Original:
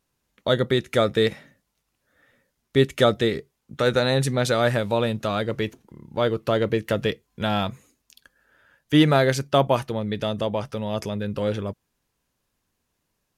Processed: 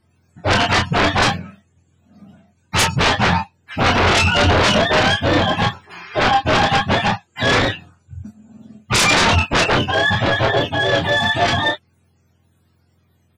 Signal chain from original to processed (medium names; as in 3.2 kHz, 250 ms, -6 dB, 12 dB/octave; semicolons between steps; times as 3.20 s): spectrum inverted on a logarithmic axis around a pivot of 600 Hz; 7.01–7.51 s: bass shelf 170 Hz -11.5 dB; sine folder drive 17 dB, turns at -5.5 dBFS; on a send: early reflections 24 ms -6 dB, 34 ms -7.5 dB; on the sum: trim -7 dB